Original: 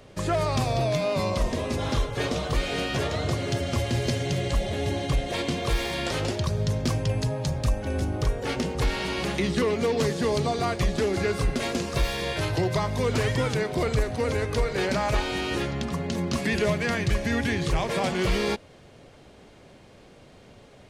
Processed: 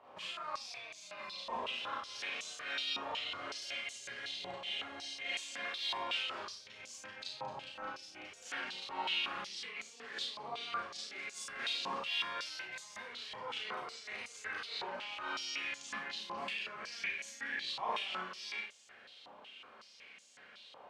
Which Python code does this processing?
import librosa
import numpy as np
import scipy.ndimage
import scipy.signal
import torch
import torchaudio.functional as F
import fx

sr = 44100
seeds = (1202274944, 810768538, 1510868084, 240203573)

p1 = fx.peak_eq(x, sr, hz=2900.0, db=5.5, octaves=0.51)
p2 = fx.over_compress(p1, sr, threshold_db=-31.0, ratio=-1.0)
p3 = p2 + fx.room_early_taps(p2, sr, ms=(33, 55), db=(-5.0, -6.5), dry=0)
p4 = fx.rev_schroeder(p3, sr, rt60_s=0.35, comb_ms=29, drr_db=-5.0)
p5 = fx.filter_held_bandpass(p4, sr, hz=5.4, low_hz=950.0, high_hz=6900.0)
y = F.gain(torch.from_numpy(p5), -4.5).numpy()